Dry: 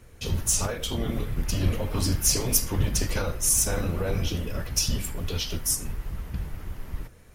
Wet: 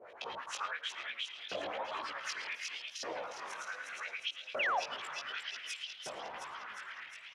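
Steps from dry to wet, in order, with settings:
auto-filter low-pass saw up 9.1 Hz 460–3,700 Hz
0:02.77–0:03.92: tuned comb filter 99 Hz, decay 1.6 s, harmonics all, mix 70%
on a send: echo with shifted repeats 357 ms, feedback 55%, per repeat +32 Hz, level −4.5 dB
on the sum: multi-voice chorus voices 2, 1 Hz, delay 17 ms, depth 4.4 ms
auto-filter high-pass saw up 0.66 Hz 580–3,700 Hz
downward compressor 2 to 1, threshold −50 dBFS, peak gain reduction 12.5 dB
0:04.59–0:04.80: sound drawn into the spectrogram fall 660–3,000 Hz −37 dBFS
level +5 dB

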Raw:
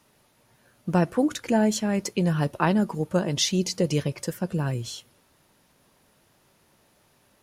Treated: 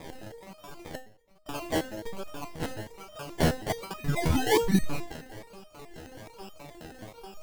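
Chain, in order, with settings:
wavefolder on the positive side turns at −16 dBFS
0:03.98–0:04.85: sound drawn into the spectrogram rise 1,700–4,300 Hz −23 dBFS
in parallel at −1.5 dB: downward compressor, threshold −30 dBFS, peak gain reduction 11 dB
on the sum: hum with harmonics 400 Hz, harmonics 20, −36 dBFS −5 dB per octave
auto-filter high-pass sine 4.9 Hz 540–3,500 Hz
spectral tilt +4.5 dB per octave
0:00.95–0:01.46: gate with flip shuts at −15 dBFS, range −28 dB
sample-and-hold swept by an LFO 30×, swing 60% 1.2 Hz
convolution reverb RT60 0.95 s, pre-delay 6 ms, DRR 13.5 dB
step-sequenced resonator 9.4 Hz 80–620 Hz
level −2.5 dB

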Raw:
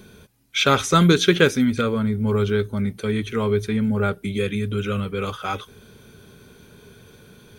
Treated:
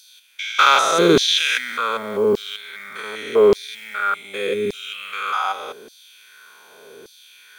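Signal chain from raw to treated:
spectrum averaged block by block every 200 ms
log-companded quantiser 8 bits
auto-filter high-pass saw down 0.85 Hz 340–4,800 Hz
level +6 dB

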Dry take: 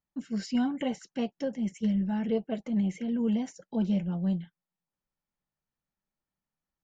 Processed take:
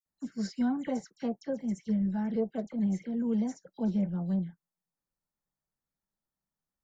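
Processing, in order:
parametric band 2,800 Hz −14 dB 0.51 octaves
all-pass dispersion lows, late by 61 ms, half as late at 2,700 Hz
level −1.5 dB

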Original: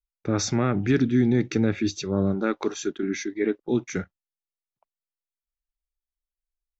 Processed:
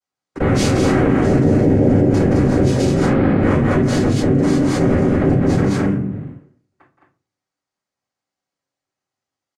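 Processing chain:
noise gate −36 dBFS, range −25 dB
spectral tilt −1.5 dB per octave
mains-hum notches 50/100/150/200 Hz
speed change −29%
flanger 0.75 Hz, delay 3.8 ms, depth 9.2 ms, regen −89%
notch comb filter 1,300 Hz
cochlear-implant simulation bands 3
loudspeakers that aren't time-aligned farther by 59 metres −10 dB, 73 metres −4 dB
convolution reverb RT60 0.35 s, pre-delay 4 ms, DRR −7 dB
envelope flattener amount 70%
level −5.5 dB

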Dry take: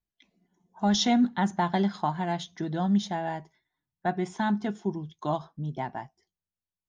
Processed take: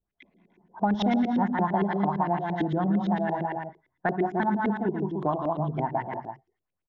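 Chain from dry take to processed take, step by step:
multi-tap delay 58/164/194/297/333 ms −13/−5.5/−13/−9.5/−20 dB
auto-filter low-pass saw up 8.8 Hz 350–2,600 Hz
downward compressor 2.5 to 1, threshold −30 dBFS, peak gain reduction 9 dB
level +5 dB

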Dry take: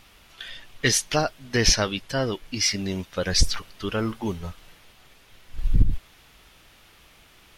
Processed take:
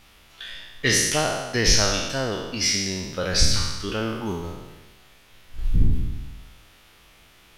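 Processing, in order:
peak hold with a decay on every bin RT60 1.17 s
level −2.5 dB

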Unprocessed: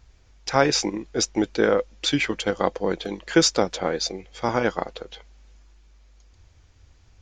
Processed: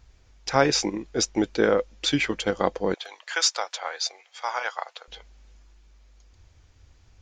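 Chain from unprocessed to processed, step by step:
0:02.94–0:05.08: high-pass filter 750 Hz 24 dB per octave
level −1 dB

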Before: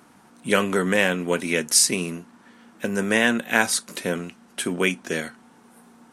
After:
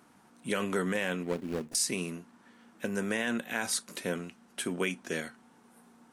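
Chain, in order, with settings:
0:01.23–0:01.75: running median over 41 samples
brickwall limiter −11 dBFS, peak gain reduction 8 dB
level −7.5 dB

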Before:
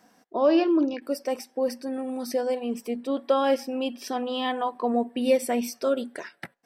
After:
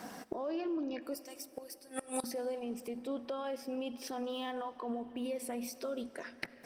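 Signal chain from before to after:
0:04.29–0:05.24: running median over 5 samples
noise gate −52 dBFS, range −7 dB
high-pass filter 65 Hz 6 dB per octave
0:01.15–0:02.24: first-order pre-emphasis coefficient 0.97
in parallel at +2 dB: downward compressor 16 to 1, threshold −30 dBFS, peak gain reduction 15 dB
on the sum: brickwall limiter −19.5 dBFS, peak gain reduction 10 dB
gate with flip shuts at −36 dBFS, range −25 dB
on a send at −15 dB: convolution reverb RT60 4.1 s, pre-delay 25 ms
on the sum: level +14 dB
Opus 24 kbit/s 48,000 Hz

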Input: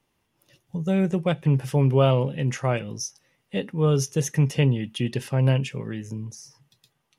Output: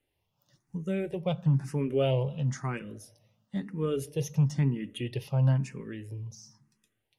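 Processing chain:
low-shelf EQ 130 Hz +5.5 dB
convolution reverb RT60 1.1 s, pre-delay 5 ms, DRR 19 dB
frequency shifter mixed with the dry sound +1 Hz
level −5.5 dB

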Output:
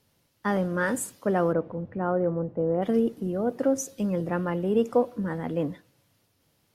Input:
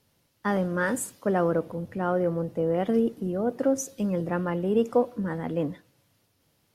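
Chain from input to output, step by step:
0:01.52–0:02.81: low-pass filter 2,000 Hz → 1,100 Hz 12 dB per octave

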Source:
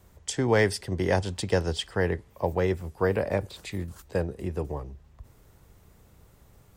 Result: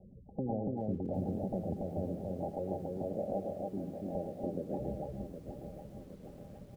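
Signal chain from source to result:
spectral magnitudes quantised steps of 30 dB
0:02.30–0:04.80: high-pass filter 390 Hz 6 dB per octave
gate on every frequency bin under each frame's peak −25 dB strong
downward compressor 4 to 1, threshold −36 dBFS, peak gain reduction 15 dB
wrap-around overflow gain 26 dB
Chebyshev low-pass with heavy ripple 830 Hz, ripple 9 dB
loudspeakers that aren't time-aligned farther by 37 metres −8 dB, 98 metres −2 dB
feedback echo at a low word length 765 ms, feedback 55%, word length 11 bits, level −9 dB
level +6 dB

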